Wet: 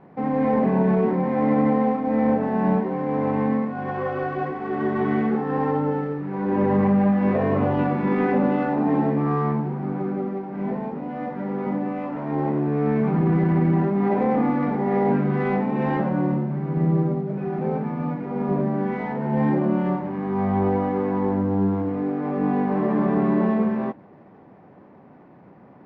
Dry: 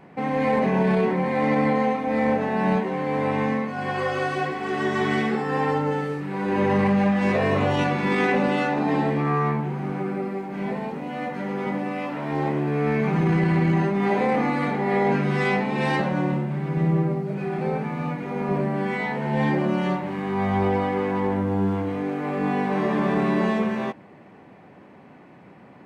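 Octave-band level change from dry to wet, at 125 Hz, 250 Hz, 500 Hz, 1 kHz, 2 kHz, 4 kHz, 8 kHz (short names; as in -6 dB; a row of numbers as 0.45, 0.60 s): +1.0 dB, +2.5 dB, 0.0 dB, -1.0 dB, -7.0 dB, under -10 dB, n/a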